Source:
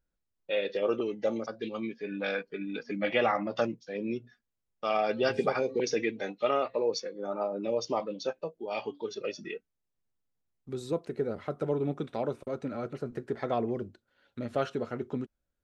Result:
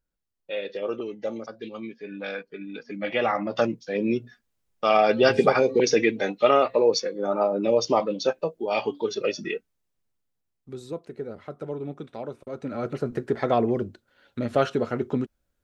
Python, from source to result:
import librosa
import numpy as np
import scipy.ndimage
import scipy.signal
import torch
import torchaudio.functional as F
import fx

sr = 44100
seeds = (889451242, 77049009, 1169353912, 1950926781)

y = fx.gain(x, sr, db=fx.line((2.91, -1.0), (3.94, 9.0), (9.49, 9.0), (10.98, -3.0), (12.4, -3.0), (12.91, 8.0)))